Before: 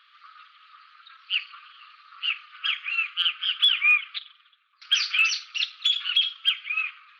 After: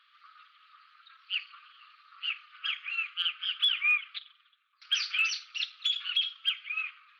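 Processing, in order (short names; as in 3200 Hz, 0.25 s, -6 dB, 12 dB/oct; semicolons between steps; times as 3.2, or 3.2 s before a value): 2.75–4.2 gate with hold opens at -34 dBFS; gain -6.5 dB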